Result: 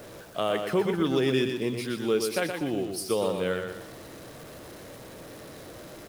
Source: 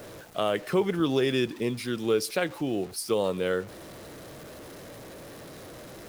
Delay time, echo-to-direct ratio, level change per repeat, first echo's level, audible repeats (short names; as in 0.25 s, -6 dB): 0.121 s, -5.5 dB, -8.5 dB, -6.0 dB, 3